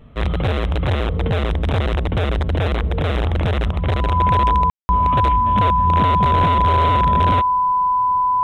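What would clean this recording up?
notch 1000 Hz, Q 30; room tone fill 4.7–4.89

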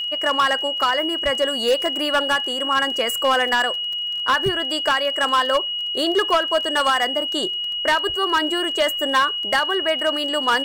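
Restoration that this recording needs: clip repair -12 dBFS; de-click; notch 2900 Hz, Q 30

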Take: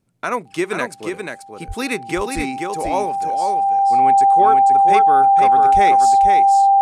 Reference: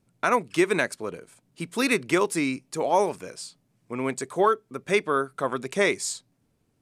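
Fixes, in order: notch 790 Hz, Q 30; 1.67–1.79 HPF 140 Hz 24 dB/oct; 2.35–2.47 HPF 140 Hz 24 dB/oct; 5.73–5.85 HPF 140 Hz 24 dB/oct; inverse comb 0.485 s -5 dB

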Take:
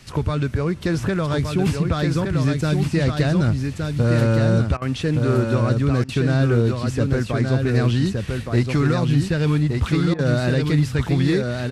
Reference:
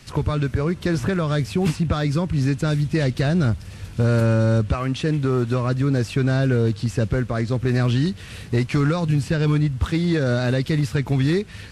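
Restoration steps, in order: interpolate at 4.77/6.04/10.14, 46 ms; inverse comb 1.168 s -4.5 dB

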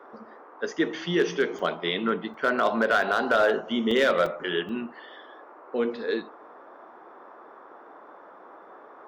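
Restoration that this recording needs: clip repair -14 dBFS; interpolate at 1.59/2.34/3.02/3.91/4.26/4.69, 3.7 ms; noise print and reduce 22 dB

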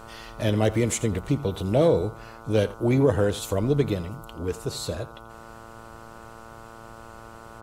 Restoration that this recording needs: de-hum 113.2 Hz, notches 13; inverse comb 84 ms -18.5 dB

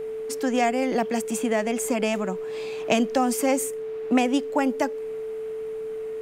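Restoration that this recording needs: notch 440 Hz, Q 30

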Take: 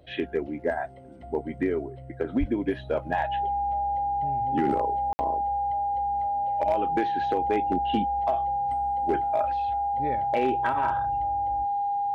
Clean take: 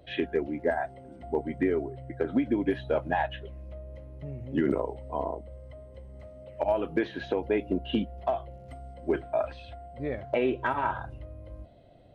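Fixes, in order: clip repair -16.5 dBFS; notch 810 Hz, Q 30; 2.39–2.51 HPF 140 Hz 24 dB/oct; room tone fill 5.13–5.19

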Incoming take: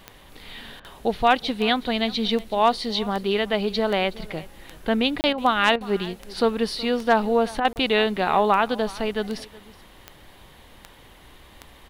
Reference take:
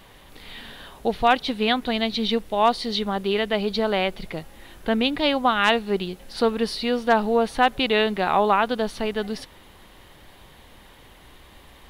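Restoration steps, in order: de-click; interpolate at 5.21/7.73, 29 ms; interpolate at 0.8/5.33/5.76/7.6, 46 ms; inverse comb 0.371 s -20.5 dB

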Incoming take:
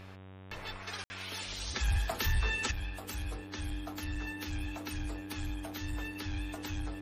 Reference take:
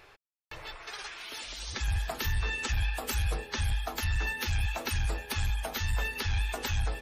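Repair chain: de-hum 94.8 Hz, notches 40; notch 300 Hz, Q 30; room tone fill 1.04–1.1; gain correction +9 dB, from 2.71

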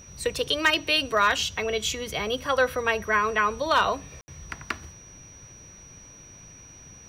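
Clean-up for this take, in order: clip repair -12.5 dBFS; notch 5800 Hz, Q 30; room tone fill 4.21–4.28

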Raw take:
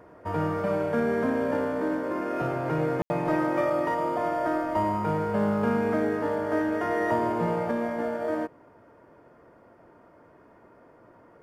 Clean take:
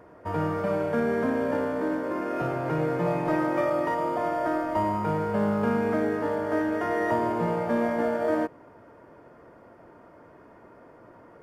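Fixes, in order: room tone fill 3.02–3.1; gain correction +3.5 dB, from 7.71

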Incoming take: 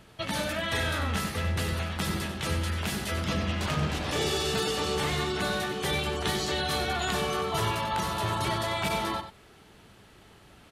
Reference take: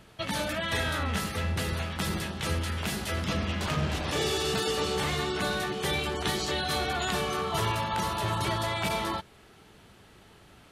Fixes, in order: clip repair -19 dBFS; inverse comb 94 ms -10 dB

